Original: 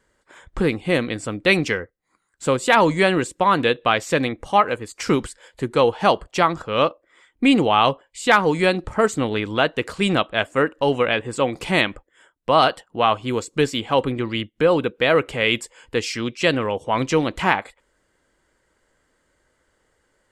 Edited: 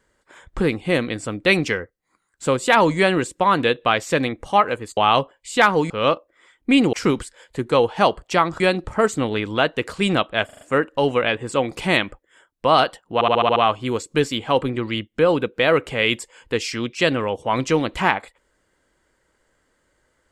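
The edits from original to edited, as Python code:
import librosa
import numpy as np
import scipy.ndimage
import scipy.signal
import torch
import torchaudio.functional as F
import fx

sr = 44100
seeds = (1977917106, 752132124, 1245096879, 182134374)

y = fx.edit(x, sr, fx.swap(start_s=4.97, length_s=1.67, other_s=7.67, other_length_s=0.93),
    fx.stutter(start_s=10.45, slice_s=0.04, count=5),
    fx.stutter(start_s=12.98, slice_s=0.07, count=7), tone=tone)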